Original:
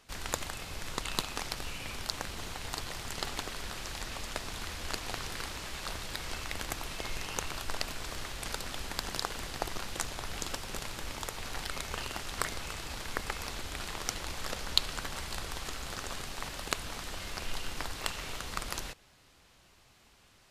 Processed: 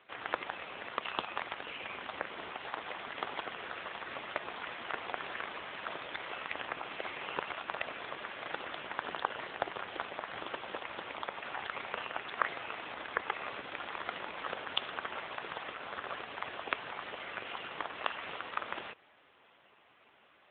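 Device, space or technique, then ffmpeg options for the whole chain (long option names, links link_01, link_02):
telephone: -af "highpass=330,lowpass=3000,volume=4.5dB" -ar 8000 -c:a libopencore_amrnb -b:a 7950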